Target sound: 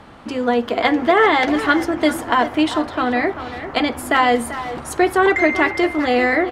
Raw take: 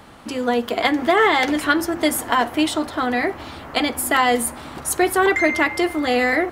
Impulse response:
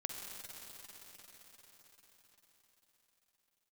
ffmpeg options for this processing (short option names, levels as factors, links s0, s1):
-filter_complex "[0:a]aemphasis=mode=reproduction:type=50fm,asplit=2[s0][s1];[s1]adelay=390,highpass=300,lowpass=3400,asoftclip=type=hard:threshold=0.237,volume=0.282[s2];[s0][s2]amix=inputs=2:normalize=0,volume=1.26"